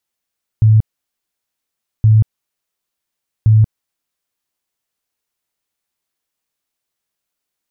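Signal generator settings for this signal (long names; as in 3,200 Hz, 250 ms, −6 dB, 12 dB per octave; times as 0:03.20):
tone bursts 109 Hz, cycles 20, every 1.42 s, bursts 3, −5.5 dBFS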